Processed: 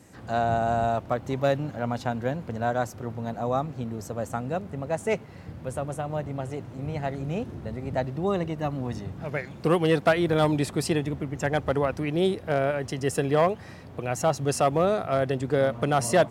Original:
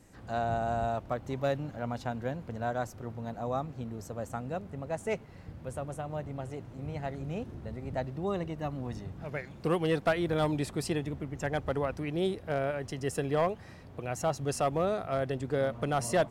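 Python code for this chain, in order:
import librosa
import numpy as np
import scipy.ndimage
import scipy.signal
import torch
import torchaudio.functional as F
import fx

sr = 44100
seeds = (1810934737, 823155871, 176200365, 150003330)

y = scipy.signal.sosfilt(scipy.signal.butter(2, 77.0, 'highpass', fs=sr, output='sos'), x)
y = y * 10.0 ** (6.5 / 20.0)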